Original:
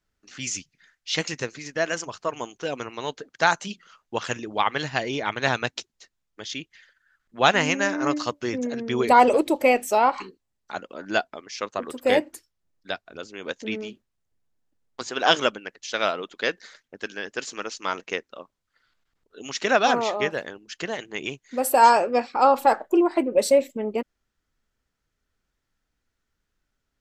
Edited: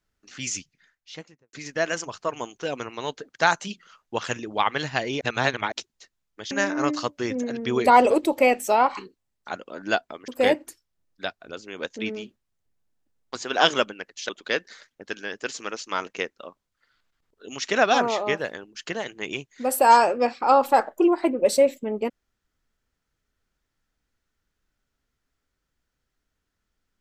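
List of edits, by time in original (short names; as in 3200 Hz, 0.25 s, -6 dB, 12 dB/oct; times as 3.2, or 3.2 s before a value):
0.55–1.53 studio fade out
5.21–5.72 reverse
6.51–7.74 cut
11.51–11.94 cut
15.95–16.22 cut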